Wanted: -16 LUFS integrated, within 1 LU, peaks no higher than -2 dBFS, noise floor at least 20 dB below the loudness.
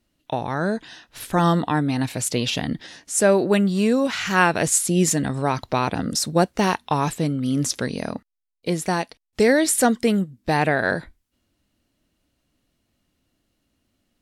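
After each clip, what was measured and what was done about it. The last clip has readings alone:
loudness -21.5 LUFS; peak -2.5 dBFS; loudness target -16.0 LUFS
-> gain +5.5 dB; limiter -2 dBFS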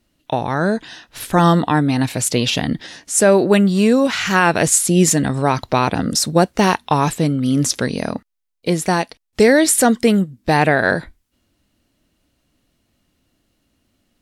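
loudness -16.5 LUFS; peak -2.0 dBFS; noise floor -68 dBFS

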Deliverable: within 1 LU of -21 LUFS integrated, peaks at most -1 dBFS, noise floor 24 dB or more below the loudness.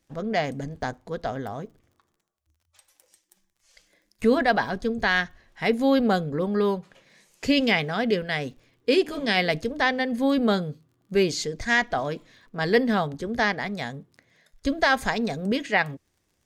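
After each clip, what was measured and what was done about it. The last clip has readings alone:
ticks 35/s; loudness -25.0 LUFS; peak -9.0 dBFS; loudness target -21.0 LUFS
-> de-click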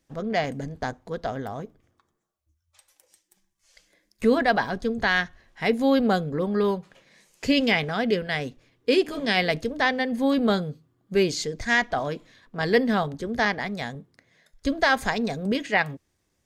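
ticks 0/s; loudness -25.0 LUFS; peak -9.0 dBFS; loudness target -21.0 LUFS
-> gain +4 dB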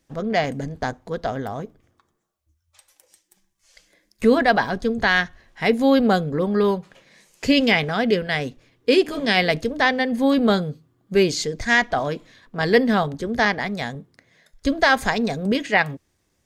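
loudness -21.0 LUFS; peak -5.0 dBFS; noise floor -70 dBFS

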